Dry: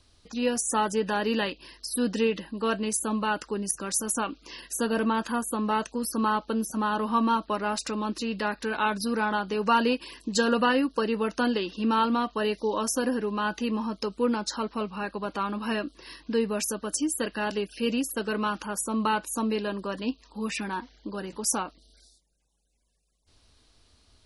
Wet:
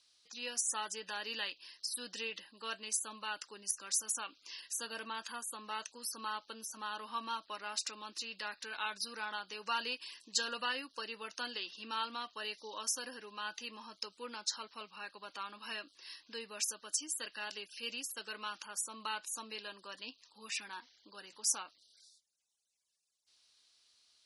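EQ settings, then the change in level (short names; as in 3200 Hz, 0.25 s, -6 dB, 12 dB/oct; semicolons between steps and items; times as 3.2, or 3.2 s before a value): LPF 5800 Hz 12 dB/oct; differentiator; +2.5 dB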